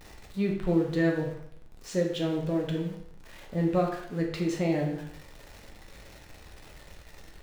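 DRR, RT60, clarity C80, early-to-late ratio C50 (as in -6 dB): -0.5 dB, 0.70 s, 8.5 dB, 5.5 dB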